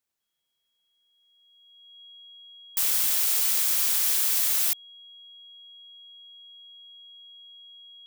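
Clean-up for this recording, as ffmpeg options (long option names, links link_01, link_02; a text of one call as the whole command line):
ffmpeg -i in.wav -af "bandreject=frequency=3300:width=30" out.wav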